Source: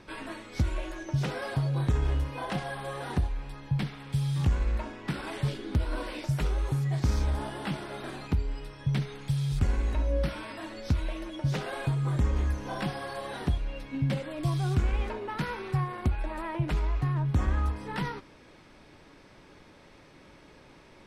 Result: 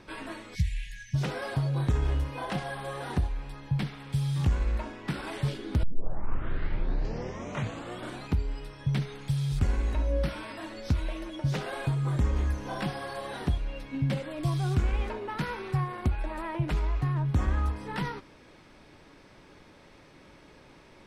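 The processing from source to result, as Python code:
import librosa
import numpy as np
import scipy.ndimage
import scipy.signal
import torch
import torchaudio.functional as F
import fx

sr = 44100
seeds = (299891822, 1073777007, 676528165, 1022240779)

y = fx.spec_erase(x, sr, start_s=0.55, length_s=0.59, low_hz=210.0, high_hz=1600.0)
y = fx.edit(y, sr, fx.tape_start(start_s=5.83, length_s=2.43), tone=tone)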